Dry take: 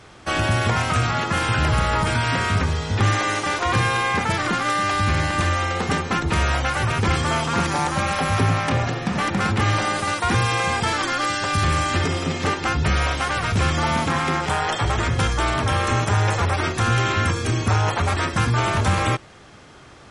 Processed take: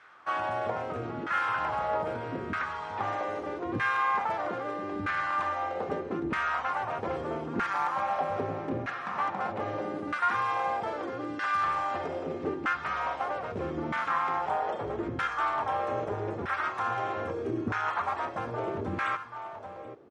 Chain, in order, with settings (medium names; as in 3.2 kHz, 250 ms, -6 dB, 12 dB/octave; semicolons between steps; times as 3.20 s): delay 782 ms -11.5 dB; LFO band-pass saw down 0.79 Hz 290–1600 Hz; trim -1.5 dB